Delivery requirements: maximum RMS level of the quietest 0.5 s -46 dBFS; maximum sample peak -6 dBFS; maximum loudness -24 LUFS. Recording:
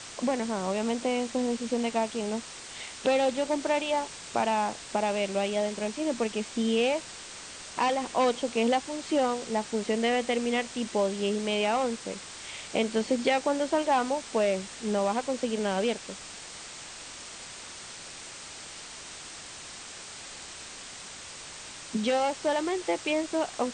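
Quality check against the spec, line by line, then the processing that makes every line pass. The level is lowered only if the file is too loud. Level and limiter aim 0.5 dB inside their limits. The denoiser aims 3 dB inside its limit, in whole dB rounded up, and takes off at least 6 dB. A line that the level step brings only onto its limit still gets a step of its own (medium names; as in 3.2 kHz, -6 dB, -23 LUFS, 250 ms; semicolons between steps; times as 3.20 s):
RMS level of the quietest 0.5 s -43 dBFS: fail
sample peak -12.5 dBFS: pass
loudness -28.5 LUFS: pass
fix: noise reduction 6 dB, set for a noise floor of -43 dBFS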